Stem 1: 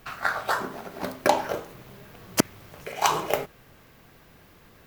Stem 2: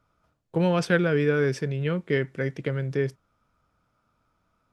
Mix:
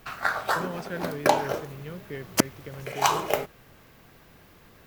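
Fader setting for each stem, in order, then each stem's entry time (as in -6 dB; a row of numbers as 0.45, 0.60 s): 0.0, -13.0 dB; 0.00, 0.00 s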